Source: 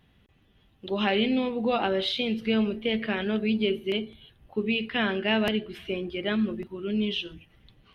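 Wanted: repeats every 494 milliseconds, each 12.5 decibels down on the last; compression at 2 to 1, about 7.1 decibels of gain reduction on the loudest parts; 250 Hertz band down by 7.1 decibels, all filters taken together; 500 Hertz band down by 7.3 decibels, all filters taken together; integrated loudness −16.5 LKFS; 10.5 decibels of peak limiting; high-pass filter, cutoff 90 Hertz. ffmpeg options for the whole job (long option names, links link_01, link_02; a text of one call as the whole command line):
ffmpeg -i in.wav -af "highpass=90,equalizer=frequency=250:width_type=o:gain=-7,equalizer=frequency=500:width_type=o:gain=-7,acompressor=threshold=-37dB:ratio=2,alimiter=level_in=5.5dB:limit=-24dB:level=0:latency=1,volume=-5.5dB,aecho=1:1:494|988|1482:0.237|0.0569|0.0137,volume=23dB" out.wav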